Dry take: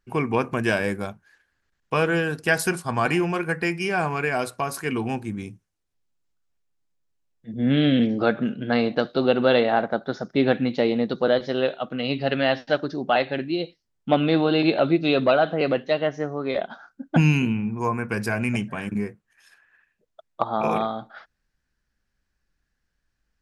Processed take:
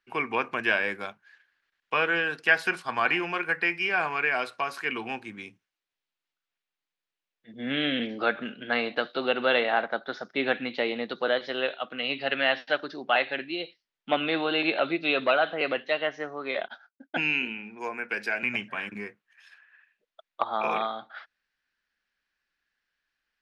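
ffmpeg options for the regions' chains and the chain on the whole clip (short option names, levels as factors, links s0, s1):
-filter_complex "[0:a]asettb=1/sr,asplit=3[s0][s1][s2];[s0]atrim=end=16.684[s3];[s1]atrim=start=16.68:end=18.43,asetpts=PTS-STARTPTS,afade=t=in:d=0.004:c=qsin,afade=t=out:st=1.746:d=0.004:c=qsin,highpass=250,agate=range=0.0224:threshold=0.01:ratio=3:release=100:detection=peak,equalizer=f=1100:t=o:w=0.31:g=-12.5[s4];[s2]atrim=start=18.426[s5];[s3][s4]acrossfade=d=0.004:c1=hsin:c2=qsin[s6];[s6][s5]acrossfade=d=0.004:c1=qsin:c2=hsin,acrossover=split=220 3800:gain=0.224 1 0.0708[s7][s8][s9];[s7][s8][s9]amix=inputs=3:normalize=0,acrossover=split=3500[s10][s11];[s11]acompressor=threshold=0.00282:ratio=4:attack=1:release=60[s12];[s10][s12]amix=inputs=2:normalize=0,tiltshelf=f=1300:g=-9.5"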